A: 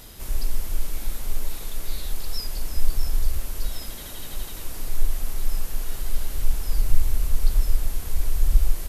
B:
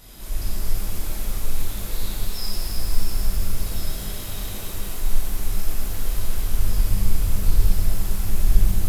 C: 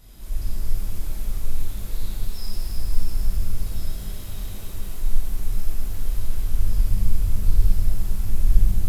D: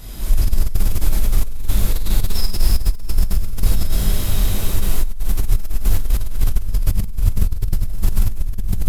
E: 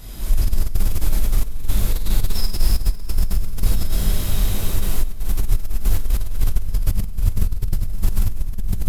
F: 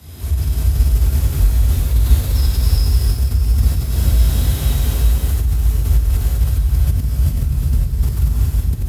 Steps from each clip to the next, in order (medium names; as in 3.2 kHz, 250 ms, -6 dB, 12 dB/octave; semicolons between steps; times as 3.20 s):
pitch-shifted reverb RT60 3.2 s, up +12 st, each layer -8 dB, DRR -8.5 dB; trim -6 dB
bass shelf 210 Hz +8.5 dB; trim -8 dB
compressor with a negative ratio -22 dBFS, ratio -1; trim +8.5 dB
reverberation RT60 4.6 s, pre-delay 35 ms, DRR 16.5 dB; trim -2 dB
recorder AGC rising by 11 dB/s; gated-style reverb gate 430 ms rising, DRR -3 dB; frequency shift +43 Hz; trim -3 dB